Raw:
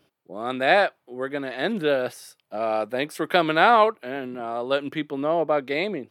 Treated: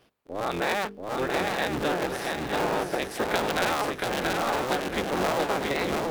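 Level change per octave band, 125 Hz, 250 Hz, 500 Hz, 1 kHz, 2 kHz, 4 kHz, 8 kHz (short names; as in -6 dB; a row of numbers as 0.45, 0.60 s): +2.0, -2.5, -5.0, -4.5, -3.0, -1.0, +9.5 dB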